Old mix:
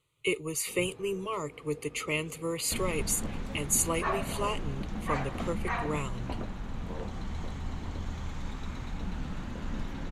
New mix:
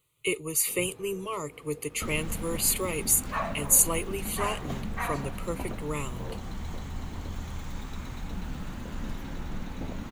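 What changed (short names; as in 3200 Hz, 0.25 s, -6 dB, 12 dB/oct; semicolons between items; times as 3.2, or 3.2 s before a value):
second sound: entry -0.70 s; master: remove air absorption 53 m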